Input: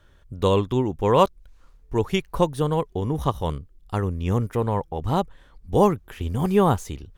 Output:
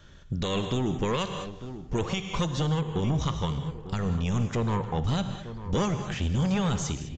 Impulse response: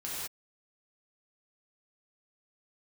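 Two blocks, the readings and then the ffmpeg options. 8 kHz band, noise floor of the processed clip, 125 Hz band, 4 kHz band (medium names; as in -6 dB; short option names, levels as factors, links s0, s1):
+3.5 dB, -45 dBFS, -2.0 dB, +1.0 dB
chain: -filter_complex "[0:a]highshelf=f=2600:g=11,aresample=16000,aresample=44100,equalizer=f=170:t=o:w=1.3:g=9.5,acrossover=split=1500[s0][s1];[s0]asoftclip=type=tanh:threshold=0.1[s2];[s2][s1]amix=inputs=2:normalize=0,asplit=2[s3][s4];[s4]adelay=898,lowpass=f=1700:p=1,volume=0.158,asplit=2[s5][s6];[s6]adelay=898,lowpass=f=1700:p=1,volume=0.45,asplit=2[s7][s8];[s8]adelay=898,lowpass=f=1700:p=1,volume=0.45,asplit=2[s9][s10];[s10]adelay=898,lowpass=f=1700:p=1,volume=0.45[s11];[s3][s5][s7][s9][s11]amix=inputs=5:normalize=0,asplit=2[s12][s13];[1:a]atrim=start_sample=2205[s14];[s13][s14]afir=irnorm=-1:irlink=0,volume=0.299[s15];[s12][s15]amix=inputs=2:normalize=0,alimiter=limit=0.112:level=0:latency=1:release=289"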